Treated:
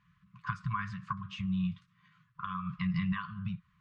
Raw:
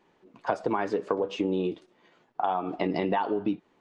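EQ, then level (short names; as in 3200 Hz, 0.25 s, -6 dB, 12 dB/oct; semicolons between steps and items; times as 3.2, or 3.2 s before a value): HPF 63 Hz; brick-wall FIR band-stop 190–1000 Hz; tilt -3.5 dB/oct; 0.0 dB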